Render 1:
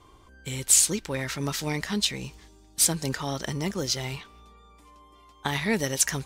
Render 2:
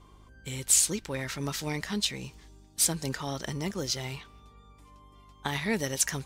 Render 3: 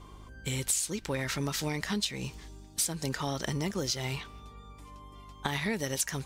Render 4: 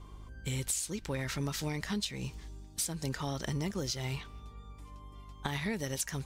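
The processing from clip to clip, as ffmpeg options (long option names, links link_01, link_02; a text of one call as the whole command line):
ffmpeg -i in.wav -af "aeval=exprs='val(0)+0.00251*(sin(2*PI*50*n/s)+sin(2*PI*2*50*n/s)/2+sin(2*PI*3*50*n/s)/3+sin(2*PI*4*50*n/s)/4+sin(2*PI*5*50*n/s)/5)':channel_layout=same,volume=-3.5dB" out.wav
ffmpeg -i in.wav -af "acompressor=threshold=-34dB:ratio=5,volume=5.5dB" out.wav
ffmpeg -i in.wav -af "lowshelf=frequency=140:gain=7.5,volume=-4.5dB" out.wav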